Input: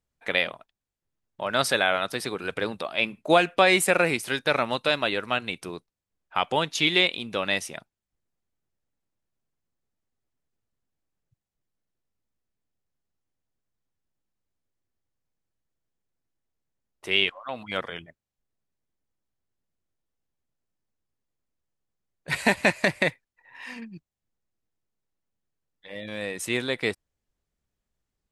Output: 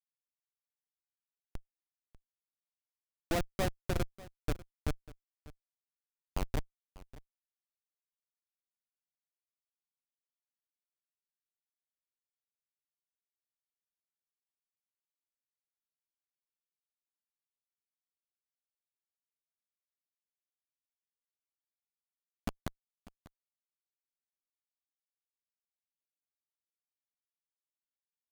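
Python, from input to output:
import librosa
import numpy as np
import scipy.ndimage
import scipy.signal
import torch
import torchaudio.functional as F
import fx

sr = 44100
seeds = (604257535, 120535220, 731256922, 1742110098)

y = fx.wiener(x, sr, points=25)
y = scipy.signal.sosfilt(scipy.signal.butter(4, 1100.0, 'lowpass', fs=sr, output='sos'), y)
y = fx.schmitt(y, sr, flips_db=-17.5)
y = y + 10.0 ** (-19.5 / 20.0) * np.pad(y, (int(594 * sr / 1000.0), 0))[:len(y)]
y = y * 10.0 ** (4.0 / 20.0)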